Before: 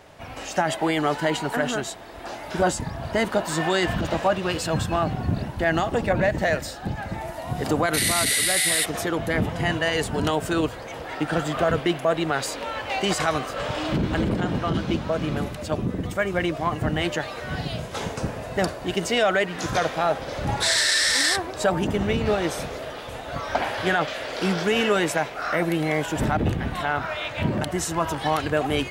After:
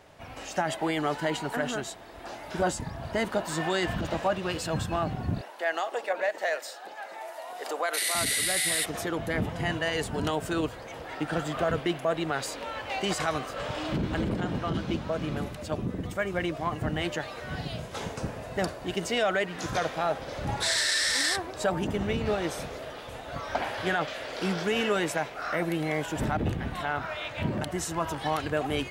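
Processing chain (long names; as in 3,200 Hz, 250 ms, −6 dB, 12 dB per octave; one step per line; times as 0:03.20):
0:05.41–0:08.15: high-pass filter 460 Hz 24 dB per octave
level −5.5 dB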